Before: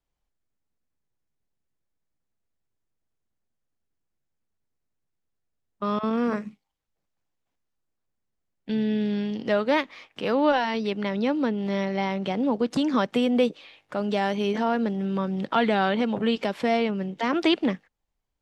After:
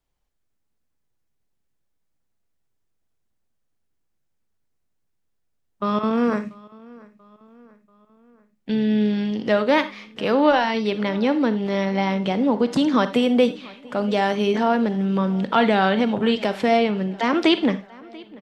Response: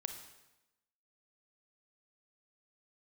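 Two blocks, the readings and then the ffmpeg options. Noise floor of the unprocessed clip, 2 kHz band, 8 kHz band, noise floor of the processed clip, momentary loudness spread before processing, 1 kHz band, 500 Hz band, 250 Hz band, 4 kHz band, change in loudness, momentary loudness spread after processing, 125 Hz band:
−80 dBFS, +4.5 dB, can't be measured, −72 dBFS, 6 LU, +4.5 dB, +4.5 dB, +4.5 dB, +4.5 dB, +4.5 dB, 9 LU, +5.0 dB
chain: -filter_complex "[0:a]asplit=2[link_01][link_02];[link_02]adelay=687,lowpass=frequency=4700:poles=1,volume=-23dB,asplit=2[link_03][link_04];[link_04]adelay=687,lowpass=frequency=4700:poles=1,volume=0.52,asplit=2[link_05][link_06];[link_06]adelay=687,lowpass=frequency=4700:poles=1,volume=0.52[link_07];[link_01][link_03][link_05][link_07]amix=inputs=4:normalize=0,asplit=2[link_08][link_09];[1:a]atrim=start_sample=2205,afade=type=out:start_time=0.15:duration=0.01,atrim=end_sample=7056[link_10];[link_09][link_10]afir=irnorm=-1:irlink=0,volume=7dB[link_11];[link_08][link_11]amix=inputs=2:normalize=0,volume=-4.5dB"

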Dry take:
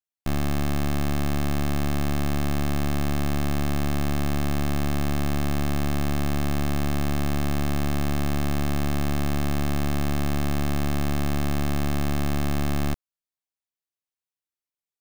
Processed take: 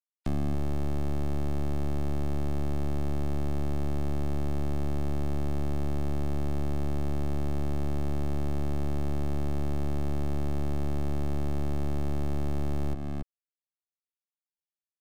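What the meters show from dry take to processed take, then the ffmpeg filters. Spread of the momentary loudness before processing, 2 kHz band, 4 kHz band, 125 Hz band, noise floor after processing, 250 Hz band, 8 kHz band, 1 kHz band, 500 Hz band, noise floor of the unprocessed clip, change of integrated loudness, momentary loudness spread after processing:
0 LU, −14.5 dB, −15.0 dB, −4.5 dB, below −85 dBFS, −7.0 dB, −15.0 dB, −9.5 dB, −4.0 dB, below −85 dBFS, −6.0 dB, 0 LU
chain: -filter_complex "[0:a]afftfilt=real='re*gte(hypot(re,im),0.00447)':imag='im*gte(hypot(re,im),0.00447)':win_size=1024:overlap=0.75,asplit=2[link_01][link_02];[link_02]adelay=279.9,volume=-8dB,highshelf=frequency=4000:gain=-6.3[link_03];[link_01][link_03]amix=inputs=2:normalize=0,acrossover=split=300|780[link_04][link_05][link_06];[link_04]acompressor=threshold=-27dB:ratio=4[link_07];[link_05]acompressor=threshold=-37dB:ratio=4[link_08];[link_06]acompressor=threshold=-50dB:ratio=4[link_09];[link_07][link_08][link_09]amix=inputs=3:normalize=0"

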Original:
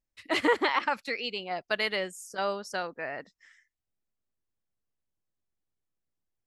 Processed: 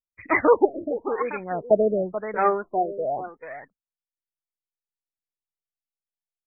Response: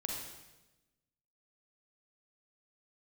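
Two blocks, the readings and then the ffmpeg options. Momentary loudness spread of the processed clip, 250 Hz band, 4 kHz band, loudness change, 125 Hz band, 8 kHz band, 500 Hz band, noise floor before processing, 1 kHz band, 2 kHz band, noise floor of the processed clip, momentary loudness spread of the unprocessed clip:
15 LU, +7.5 dB, below −40 dB, +6.5 dB, +10.5 dB, below −30 dB, +10.5 dB, below −85 dBFS, +6.5 dB, 0.0 dB, below −85 dBFS, 11 LU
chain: -filter_complex "[0:a]aphaser=in_gain=1:out_gain=1:delay=2.9:decay=0.6:speed=0.56:type=sinusoidal,acrossover=split=2400[link_01][link_02];[link_01]aecho=1:1:434:0.237[link_03];[link_02]asoftclip=type=tanh:threshold=-31dB[link_04];[link_03][link_04]amix=inputs=2:normalize=0,agate=range=-33dB:threshold=-49dB:ratio=3:detection=peak,afftfilt=real='re*lt(b*sr/1024,650*pow(2600/650,0.5+0.5*sin(2*PI*0.93*pts/sr)))':imag='im*lt(b*sr/1024,650*pow(2600/650,0.5+0.5*sin(2*PI*0.93*pts/sr)))':win_size=1024:overlap=0.75,volume=8dB"

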